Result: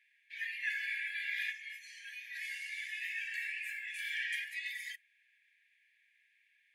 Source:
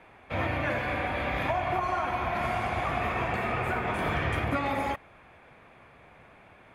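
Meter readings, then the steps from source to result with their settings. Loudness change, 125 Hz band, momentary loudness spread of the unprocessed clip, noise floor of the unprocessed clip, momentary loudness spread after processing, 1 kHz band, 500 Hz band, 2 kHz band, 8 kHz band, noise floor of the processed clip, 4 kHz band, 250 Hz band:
-8.5 dB, under -40 dB, 2 LU, -55 dBFS, 11 LU, under -40 dB, under -40 dB, -3.5 dB, -0.5 dB, -73 dBFS, -3.0 dB, under -40 dB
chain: spectral noise reduction 11 dB; brick-wall FIR high-pass 1600 Hz

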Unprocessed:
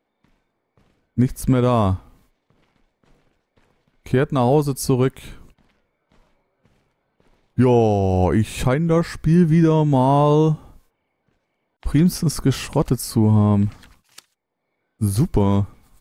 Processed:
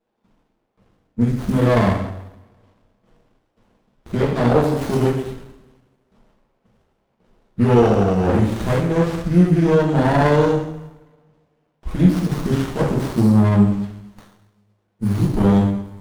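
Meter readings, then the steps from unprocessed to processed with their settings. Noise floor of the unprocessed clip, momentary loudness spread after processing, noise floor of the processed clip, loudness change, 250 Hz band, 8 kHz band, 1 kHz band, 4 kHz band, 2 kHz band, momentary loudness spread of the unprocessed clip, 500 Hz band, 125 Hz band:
-74 dBFS, 12 LU, -69 dBFS, +1.0 dB, +1.5 dB, -8.0 dB, 0.0 dB, -1.5 dB, +5.0 dB, 8 LU, +1.5 dB, 0.0 dB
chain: two-slope reverb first 0.8 s, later 2 s, from -24 dB, DRR -8 dB; running maximum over 17 samples; gain -6.5 dB

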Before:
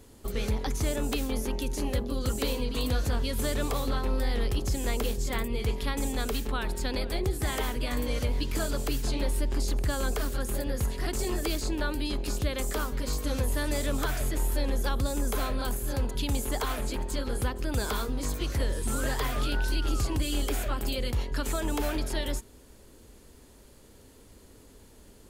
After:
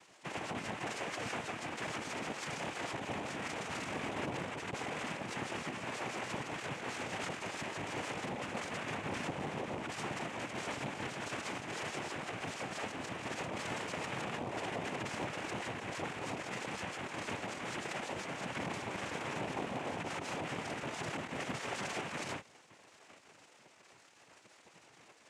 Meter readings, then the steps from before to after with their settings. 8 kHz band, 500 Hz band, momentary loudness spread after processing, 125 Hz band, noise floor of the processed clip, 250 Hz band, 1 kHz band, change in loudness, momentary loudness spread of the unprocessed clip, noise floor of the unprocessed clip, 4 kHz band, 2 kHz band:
-10.5 dB, -8.5 dB, 2 LU, -14.5 dB, -62 dBFS, -9.5 dB, -2.5 dB, -9.0 dB, 2 LU, -53 dBFS, -8.0 dB, -2.0 dB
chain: CVSD 16 kbps; sample-and-hold 38×; robotiser 320 Hz; hard clip -26.5 dBFS, distortion -14 dB; LPF 1500 Hz 6 dB/oct; spectral gate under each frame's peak -30 dB weak; limiter -45.5 dBFS, peak gain reduction 10 dB; noise vocoder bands 4; Doppler distortion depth 0.3 ms; gain +16.5 dB

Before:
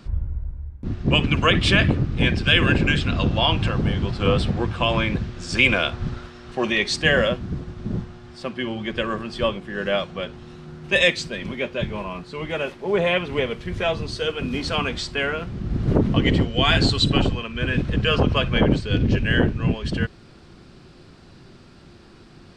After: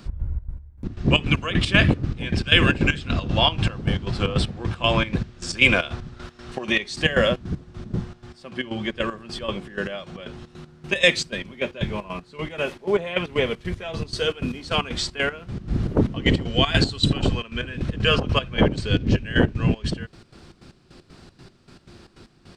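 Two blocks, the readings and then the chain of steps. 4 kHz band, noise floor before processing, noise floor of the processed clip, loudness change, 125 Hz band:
-0.5 dB, -47 dBFS, -54 dBFS, -1.0 dB, -1.5 dB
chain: step gate "x.xx.x.." 155 bpm -12 dB; high shelf 6800 Hz +7 dB; gain +1 dB

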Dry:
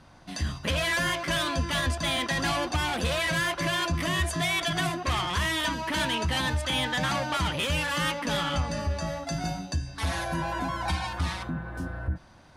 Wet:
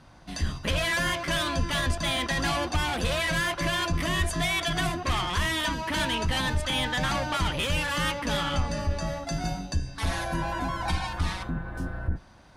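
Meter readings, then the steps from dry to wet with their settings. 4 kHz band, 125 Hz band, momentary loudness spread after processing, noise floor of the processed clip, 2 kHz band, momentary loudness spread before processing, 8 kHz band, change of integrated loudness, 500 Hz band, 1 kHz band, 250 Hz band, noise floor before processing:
0.0 dB, +0.5 dB, 7 LU, -49 dBFS, 0.0 dB, 7 LU, 0.0 dB, 0.0 dB, 0.0 dB, 0.0 dB, +0.5 dB, -52 dBFS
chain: octaver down 2 oct, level -3 dB

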